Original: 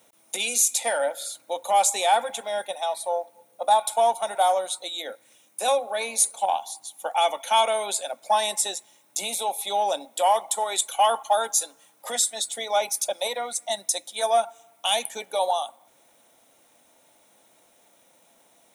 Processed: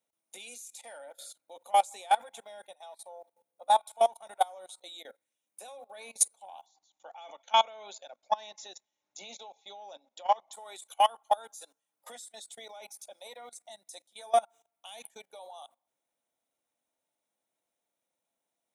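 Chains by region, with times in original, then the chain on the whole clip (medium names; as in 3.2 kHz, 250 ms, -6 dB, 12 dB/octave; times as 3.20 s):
6.66–10.53 s: brick-wall FIR low-pass 7.2 kHz + bass shelf 160 Hz -2.5 dB
whole clip: level held to a coarse grid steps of 18 dB; upward expansion 1.5:1, over -45 dBFS; trim -1 dB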